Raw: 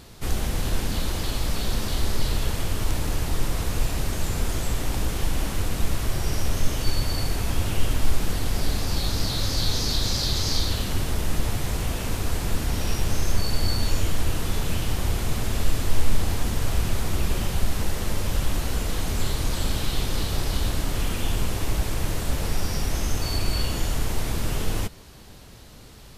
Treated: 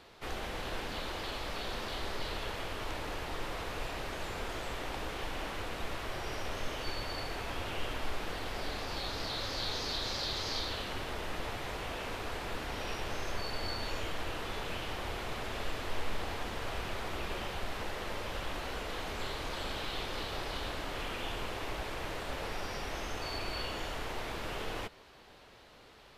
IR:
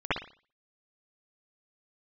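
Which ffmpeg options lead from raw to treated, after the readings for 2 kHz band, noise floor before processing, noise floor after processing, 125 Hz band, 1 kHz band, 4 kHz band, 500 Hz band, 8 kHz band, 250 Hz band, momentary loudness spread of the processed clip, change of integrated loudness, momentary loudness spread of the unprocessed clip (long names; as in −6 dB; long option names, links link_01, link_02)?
−4.0 dB, −44 dBFS, −57 dBFS, −18.0 dB, −3.5 dB, −8.0 dB, −5.5 dB, −16.5 dB, −12.5 dB, 4 LU, −10.5 dB, 3 LU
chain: -filter_complex "[0:a]acrossover=split=360 4000:gain=0.178 1 0.158[link_01][link_02][link_03];[link_01][link_02][link_03]amix=inputs=3:normalize=0,volume=-3.5dB"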